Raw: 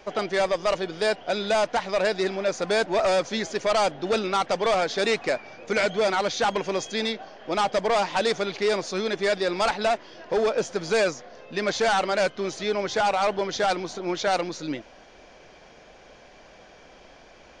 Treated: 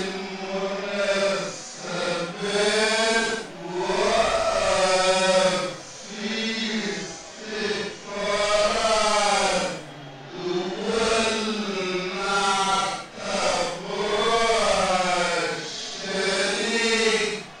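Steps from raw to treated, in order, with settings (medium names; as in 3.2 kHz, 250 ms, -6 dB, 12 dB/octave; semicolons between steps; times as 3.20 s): formants flattened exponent 0.6; level-controlled noise filter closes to 1.9 kHz, open at -20 dBFS; Paulstretch 6×, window 0.10 s, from 2.28 s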